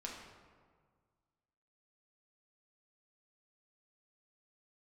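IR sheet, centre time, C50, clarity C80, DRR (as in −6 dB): 62 ms, 2.5 dB, 4.5 dB, −2.5 dB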